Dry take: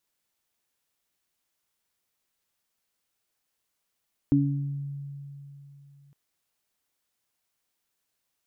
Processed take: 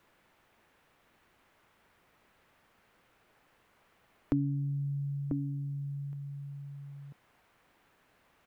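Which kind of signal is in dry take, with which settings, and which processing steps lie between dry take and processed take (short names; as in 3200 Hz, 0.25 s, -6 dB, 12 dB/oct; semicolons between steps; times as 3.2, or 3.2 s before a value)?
additive tone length 1.81 s, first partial 141 Hz, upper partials 6 dB, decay 3.36 s, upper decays 0.71 s, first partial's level -22 dB
outdoor echo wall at 170 m, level -10 dB; three-band squash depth 70%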